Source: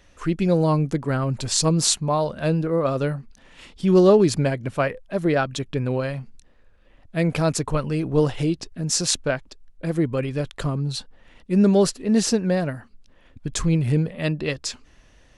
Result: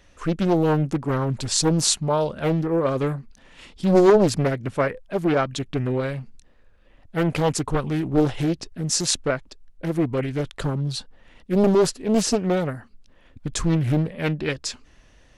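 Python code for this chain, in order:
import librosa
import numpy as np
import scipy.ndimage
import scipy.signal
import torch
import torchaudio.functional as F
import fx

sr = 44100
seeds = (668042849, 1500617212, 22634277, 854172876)

y = fx.doppler_dist(x, sr, depth_ms=0.82)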